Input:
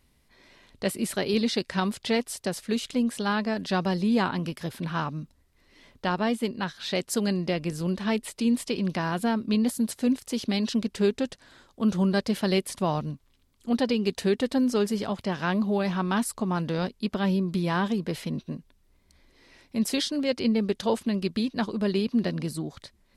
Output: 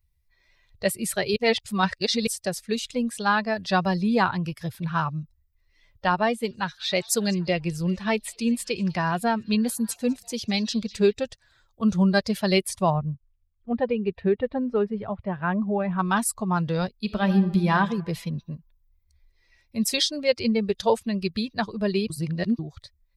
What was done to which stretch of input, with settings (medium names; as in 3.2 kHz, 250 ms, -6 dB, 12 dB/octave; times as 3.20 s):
1.36–2.27 s: reverse
6.12–11.13 s: repeats whose band climbs or falls 198 ms, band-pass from 4.8 kHz, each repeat -0.7 oct, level -11 dB
12.90–15.99 s: distance through air 470 m
17.01–17.76 s: reverb throw, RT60 1.3 s, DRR 5.5 dB
22.10–22.59 s: reverse
whole clip: expander on every frequency bin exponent 1.5; peaking EQ 280 Hz -12.5 dB 0.59 oct; band-stop 3 kHz, Q 21; trim +8.5 dB